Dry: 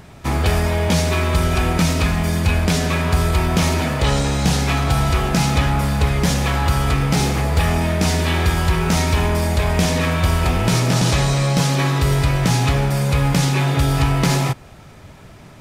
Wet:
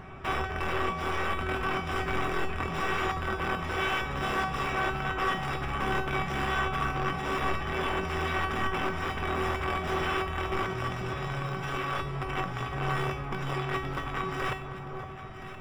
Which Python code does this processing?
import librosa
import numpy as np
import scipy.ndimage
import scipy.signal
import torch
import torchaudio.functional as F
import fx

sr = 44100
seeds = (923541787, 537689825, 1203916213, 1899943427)

y = fx.over_compress(x, sr, threshold_db=-21.0, ratio=-0.5)
y = (np.mod(10.0 ** (17.0 / 20.0) * y + 1.0, 2.0) - 1.0) / 10.0 ** (17.0 / 20.0)
y = scipy.signal.savgol_filter(y, 25, 4, mode='constant')
y = fx.peak_eq(y, sr, hz=1200.0, db=7.0, octaves=0.47)
y = fx.comb_fb(y, sr, f0_hz=380.0, decay_s=0.42, harmonics='all', damping=0.0, mix_pct=90)
y = fx.echo_alternate(y, sr, ms=511, hz=1200.0, feedback_pct=53, wet_db=-7.5)
y = y * 10.0 ** (8.0 / 20.0)